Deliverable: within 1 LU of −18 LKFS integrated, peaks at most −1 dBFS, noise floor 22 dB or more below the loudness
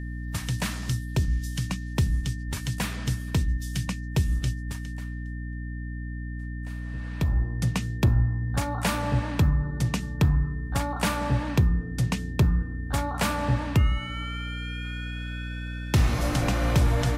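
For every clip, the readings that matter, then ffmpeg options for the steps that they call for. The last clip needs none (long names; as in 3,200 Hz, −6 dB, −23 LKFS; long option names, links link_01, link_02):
mains hum 60 Hz; hum harmonics up to 300 Hz; level of the hum −31 dBFS; interfering tone 1,800 Hz; level of the tone −45 dBFS; integrated loudness −27.5 LKFS; sample peak −12.0 dBFS; target loudness −18.0 LKFS
→ -af "bandreject=frequency=60:width_type=h:width=6,bandreject=frequency=120:width_type=h:width=6,bandreject=frequency=180:width_type=h:width=6,bandreject=frequency=240:width_type=h:width=6,bandreject=frequency=300:width_type=h:width=6"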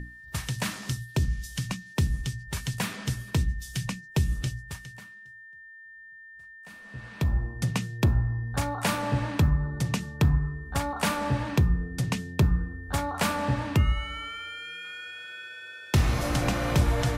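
mains hum none found; interfering tone 1,800 Hz; level of the tone −45 dBFS
→ -af "bandreject=frequency=1800:width=30"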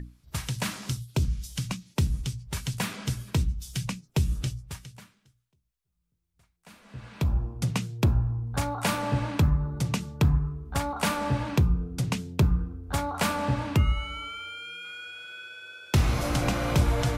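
interfering tone none found; integrated loudness −28.5 LKFS; sample peak −12.5 dBFS; target loudness −18.0 LKFS
→ -af "volume=10.5dB"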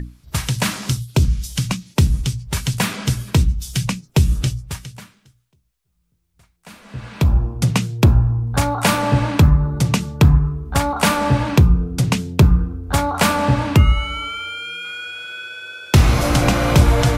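integrated loudness −18.0 LKFS; sample peak −2.0 dBFS; background noise floor −66 dBFS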